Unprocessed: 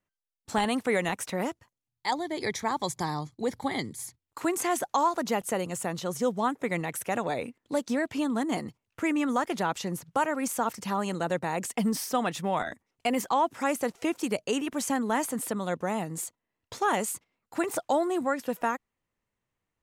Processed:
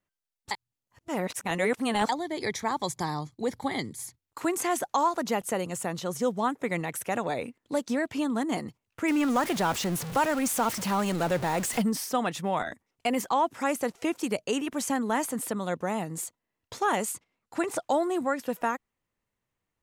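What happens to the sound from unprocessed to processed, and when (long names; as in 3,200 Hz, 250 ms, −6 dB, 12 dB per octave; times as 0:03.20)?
0:00.51–0:02.09: reverse
0:09.08–0:11.82: converter with a step at zero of −30.5 dBFS
0:17.12–0:17.82: low-pass filter 11,000 Hz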